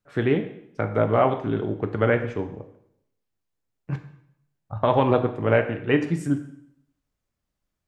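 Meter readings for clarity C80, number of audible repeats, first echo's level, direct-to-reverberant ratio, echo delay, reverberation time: 13.0 dB, no echo, no echo, 6.0 dB, no echo, 0.70 s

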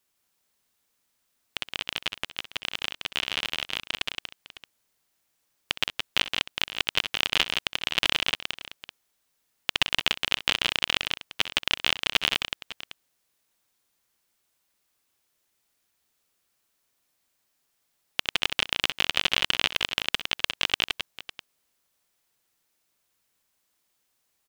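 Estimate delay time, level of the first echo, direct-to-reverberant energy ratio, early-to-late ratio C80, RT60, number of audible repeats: 64 ms, -15.0 dB, no reverb, no reverb, no reverb, 3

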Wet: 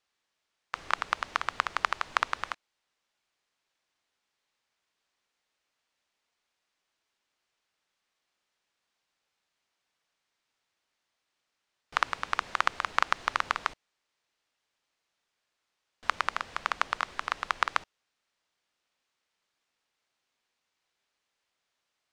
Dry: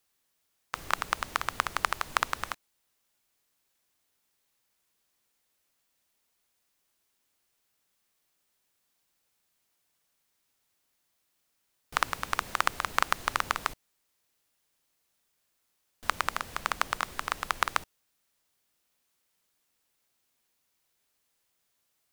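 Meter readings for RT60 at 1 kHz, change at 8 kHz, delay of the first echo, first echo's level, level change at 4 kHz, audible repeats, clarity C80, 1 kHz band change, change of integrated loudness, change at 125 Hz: no reverb, -7.5 dB, no echo, no echo, -1.0 dB, no echo, no reverb, +0.5 dB, 0.0 dB, -7.0 dB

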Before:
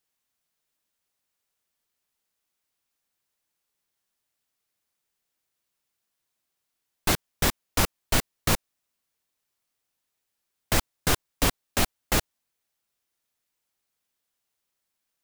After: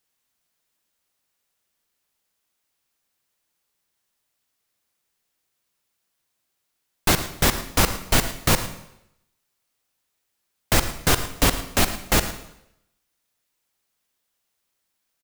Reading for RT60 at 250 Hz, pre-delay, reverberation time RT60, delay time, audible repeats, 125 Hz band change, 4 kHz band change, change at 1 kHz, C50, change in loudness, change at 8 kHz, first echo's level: 0.75 s, 30 ms, 0.80 s, 110 ms, 1, +5.0 dB, +5.0 dB, +5.0 dB, 10.0 dB, +5.0 dB, +5.0 dB, -15.5 dB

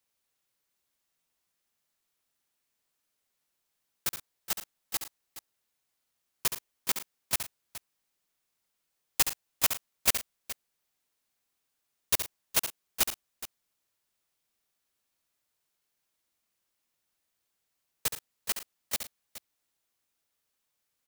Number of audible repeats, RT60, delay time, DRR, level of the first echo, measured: 3, no reverb, 70 ms, no reverb, -9.0 dB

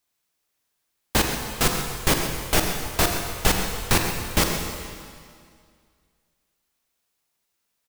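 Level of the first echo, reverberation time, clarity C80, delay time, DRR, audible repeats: -12.0 dB, 2.1 s, 4.5 dB, 132 ms, 2.5 dB, 1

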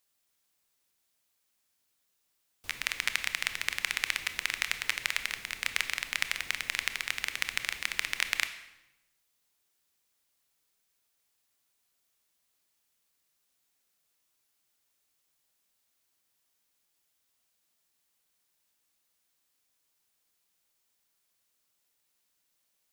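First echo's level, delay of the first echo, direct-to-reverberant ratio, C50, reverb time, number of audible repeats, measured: no echo, no echo, 9.5 dB, 11.5 dB, 0.95 s, no echo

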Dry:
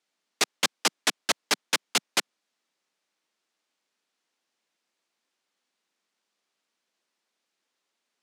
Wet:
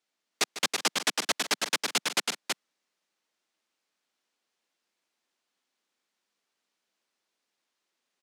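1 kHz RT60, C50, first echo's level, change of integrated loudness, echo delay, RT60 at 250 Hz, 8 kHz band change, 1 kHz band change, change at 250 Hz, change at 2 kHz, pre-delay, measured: no reverb, no reverb, -13.0 dB, -2.0 dB, 149 ms, no reverb, -1.0 dB, -1.0 dB, -1.5 dB, -1.0 dB, no reverb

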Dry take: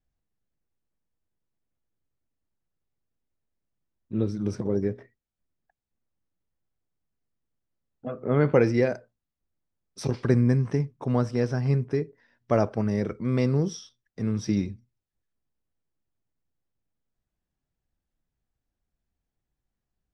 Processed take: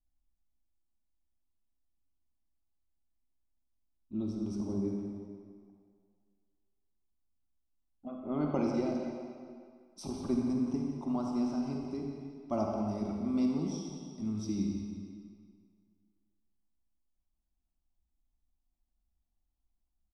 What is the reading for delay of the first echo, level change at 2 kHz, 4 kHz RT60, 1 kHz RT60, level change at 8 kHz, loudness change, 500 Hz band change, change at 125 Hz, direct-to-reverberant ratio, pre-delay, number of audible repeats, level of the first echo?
175 ms, -18.0 dB, 1.7 s, 2.1 s, no reading, -8.5 dB, -11.5 dB, -15.5 dB, 0.0 dB, 37 ms, 1, -10.5 dB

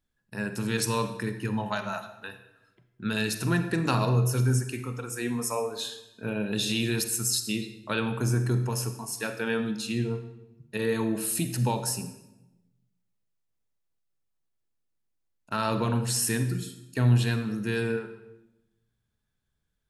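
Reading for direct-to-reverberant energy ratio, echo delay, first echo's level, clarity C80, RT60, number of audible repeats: 9.0 dB, no echo, no echo, 12.0 dB, 0.95 s, no echo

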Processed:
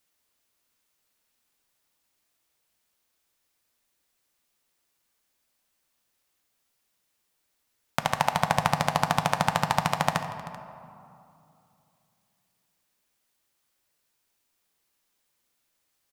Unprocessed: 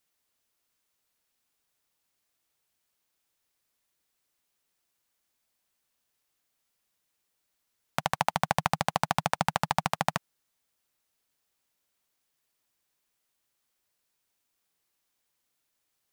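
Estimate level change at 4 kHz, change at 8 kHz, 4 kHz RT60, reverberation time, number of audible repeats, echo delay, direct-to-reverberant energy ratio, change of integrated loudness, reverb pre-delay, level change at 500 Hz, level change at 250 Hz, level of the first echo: +3.5 dB, +3.5 dB, 1.2 s, 2.7 s, 2, 67 ms, 7.0 dB, +3.5 dB, 3 ms, +4.0 dB, +4.0 dB, -16.0 dB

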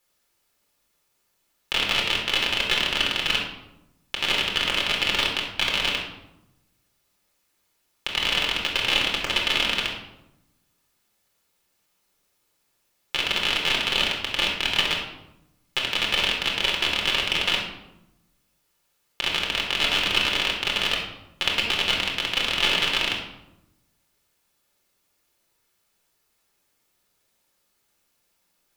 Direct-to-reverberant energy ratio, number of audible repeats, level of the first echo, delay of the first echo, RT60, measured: -2.0 dB, no echo, no echo, no echo, 0.90 s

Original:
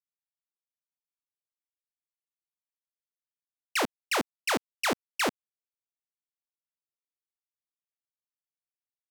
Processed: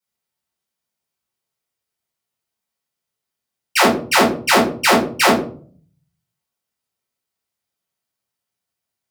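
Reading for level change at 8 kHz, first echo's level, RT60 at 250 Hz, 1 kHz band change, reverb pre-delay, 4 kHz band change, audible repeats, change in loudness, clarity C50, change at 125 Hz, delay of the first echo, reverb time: +13.0 dB, no echo, 0.85 s, +16.0 dB, 3 ms, +14.0 dB, no echo, +14.5 dB, 5.5 dB, +19.0 dB, no echo, 0.45 s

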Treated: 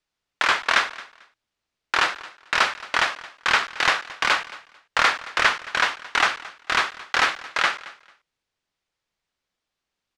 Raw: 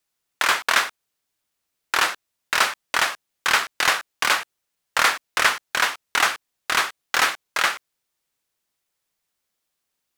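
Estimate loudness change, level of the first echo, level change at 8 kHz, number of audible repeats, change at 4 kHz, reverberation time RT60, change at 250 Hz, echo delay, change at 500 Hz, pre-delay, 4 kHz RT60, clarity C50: -0.5 dB, -19.0 dB, -7.5 dB, 2, -1.0 dB, no reverb, +0.5 dB, 222 ms, 0.0 dB, no reverb, no reverb, no reverb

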